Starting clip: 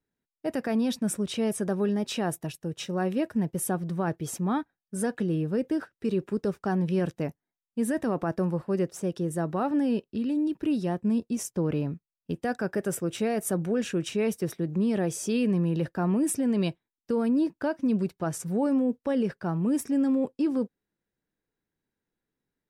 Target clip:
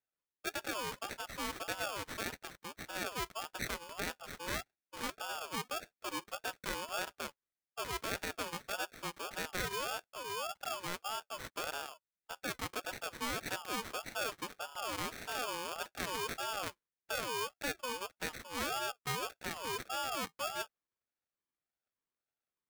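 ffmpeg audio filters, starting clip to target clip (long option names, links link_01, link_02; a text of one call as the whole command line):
ffmpeg -i in.wav -af "acrusher=samples=22:mix=1:aa=0.000001,highpass=frequency=950:poles=1,aeval=exprs='val(0)*sin(2*PI*910*n/s+910*0.25/1.7*sin(2*PI*1.7*n/s))':channel_layout=same,volume=-2dB" out.wav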